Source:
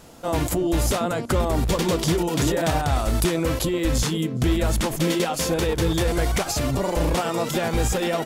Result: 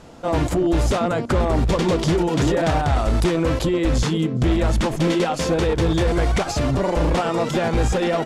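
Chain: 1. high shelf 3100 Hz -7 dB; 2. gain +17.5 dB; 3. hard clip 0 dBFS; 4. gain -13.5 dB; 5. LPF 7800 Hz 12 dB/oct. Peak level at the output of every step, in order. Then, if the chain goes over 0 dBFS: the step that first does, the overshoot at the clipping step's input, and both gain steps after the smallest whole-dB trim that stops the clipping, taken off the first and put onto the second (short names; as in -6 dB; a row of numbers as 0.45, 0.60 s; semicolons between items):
-13.0, +4.5, 0.0, -13.5, -13.0 dBFS; step 2, 4.5 dB; step 2 +12.5 dB, step 4 -8.5 dB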